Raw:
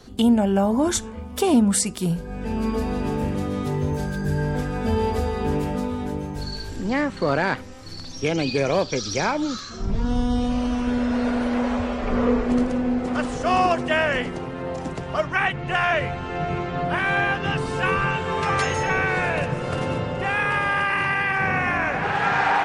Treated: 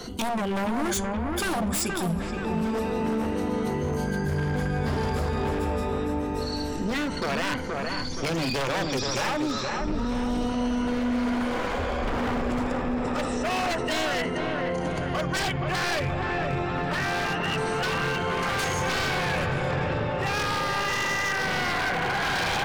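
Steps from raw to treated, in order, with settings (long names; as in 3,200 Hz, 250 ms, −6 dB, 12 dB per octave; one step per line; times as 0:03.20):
rippled gain that drifts along the octave scale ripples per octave 1.9, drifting +0.28 Hz, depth 10 dB
mains-hum notches 50/100/150/200/250 Hz
wave folding −19 dBFS
0:19.71–0:20.19: high-frequency loss of the air 100 metres
delay with a low-pass on its return 474 ms, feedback 48%, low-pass 2,300 Hz, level −5 dB
envelope flattener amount 50%
level −5 dB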